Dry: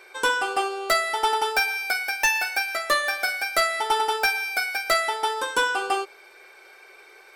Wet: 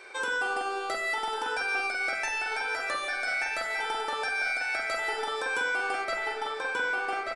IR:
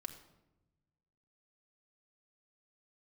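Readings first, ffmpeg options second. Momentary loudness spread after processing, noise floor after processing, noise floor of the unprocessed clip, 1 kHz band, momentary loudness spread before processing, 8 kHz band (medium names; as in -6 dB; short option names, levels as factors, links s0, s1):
3 LU, -35 dBFS, -50 dBFS, -7.0 dB, 4 LU, -10.5 dB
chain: -filter_complex "[0:a]aresample=22050,aresample=44100,asplit=2[s0][s1];[s1]adelay=1184,lowpass=f=4100:p=1,volume=0.501,asplit=2[s2][s3];[s3]adelay=1184,lowpass=f=4100:p=1,volume=0.44,asplit=2[s4][s5];[s5]adelay=1184,lowpass=f=4100:p=1,volume=0.44,asplit=2[s6][s7];[s7]adelay=1184,lowpass=f=4100:p=1,volume=0.44,asplit=2[s8][s9];[s9]adelay=1184,lowpass=f=4100:p=1,volume=0.44[s10];[s0][s2][s4][s6][s8][s10]amix=inputs=6:normalize=0,acompressor=threshold=0.0501:ratio=6,alimiter=limit=0.0631:level=0:latency=1:release=134,asplit=2[s11][s12];[1:a]atrim=start_sample=2205,lowpass=2300,adelay=45[s13];[s12][s13]afir=irnorm=-1:irlink=0,volume=1.5[s14];[s11][s14]amix=inputs=2:normalize=0"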